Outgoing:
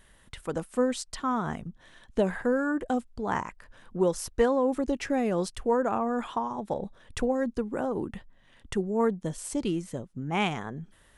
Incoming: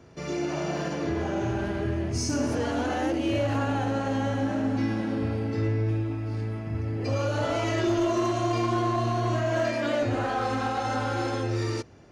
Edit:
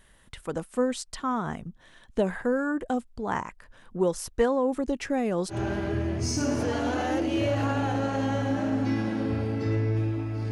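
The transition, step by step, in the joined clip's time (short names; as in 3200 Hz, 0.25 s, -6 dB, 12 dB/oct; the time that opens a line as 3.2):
outgoing
5.54 switch to incoming from 1.46 s, crossfade 0.12 s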